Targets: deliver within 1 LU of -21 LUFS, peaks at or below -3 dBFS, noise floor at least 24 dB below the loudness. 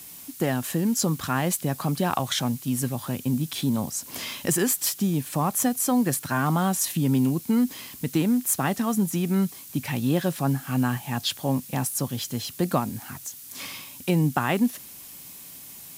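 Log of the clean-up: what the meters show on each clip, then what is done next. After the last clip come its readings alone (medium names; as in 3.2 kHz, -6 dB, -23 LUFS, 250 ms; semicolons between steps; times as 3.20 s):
noise floor -43 dBFS; noise floor target -50 dBFS; loudness -25.5 LUFS; peak level -8.5 dBFS; loudness target -21.0 LUFS
-> noise reduction 7 dB, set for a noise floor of -43 dBFS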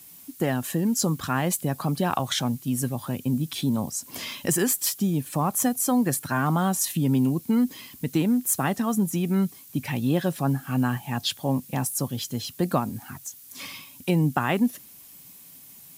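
noise floor -48 dBFS; noise floor target -50 dBFS
-> noise reduction 6 dB, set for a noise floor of -48 dBFS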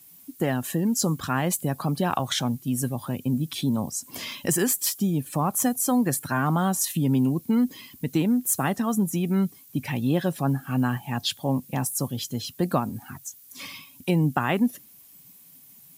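noise floor -51 dBFS; loudness -25.5 LUFS; peak level -8.5 dBFS; loudness target -21.0 LUFS
-> trim +4.5 dB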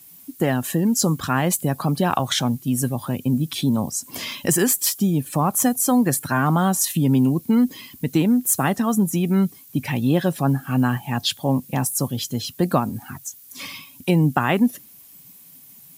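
loudness -21.0 LUFS; peak level -4.0 dBFS; noise floor -47 dBFS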